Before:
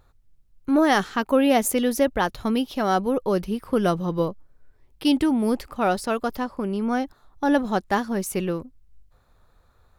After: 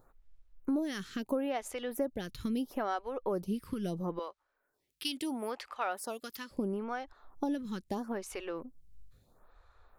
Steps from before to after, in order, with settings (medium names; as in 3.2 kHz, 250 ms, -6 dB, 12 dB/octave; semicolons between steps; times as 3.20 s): 4.19–6.51 s: high-pass 1.3 kHz 6 dB/octave; compression 6:1, threshold -29 dBFS, peak gain reduction 14 dB; lamp-driven phase shifter 0.75 Hz